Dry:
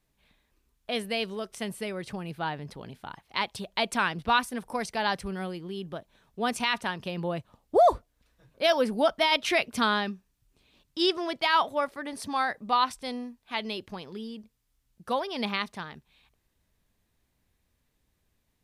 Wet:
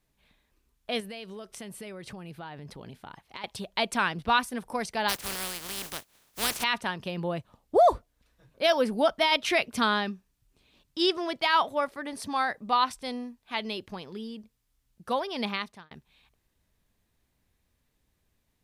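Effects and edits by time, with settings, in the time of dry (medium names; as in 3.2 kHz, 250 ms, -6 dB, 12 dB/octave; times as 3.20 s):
1.00–3.44 s: compression 5:1, threshold -38 dBFS
5.08–6.62 s: spectral contrast reduction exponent 0.22
15.32–15.91 s: fade out equal-power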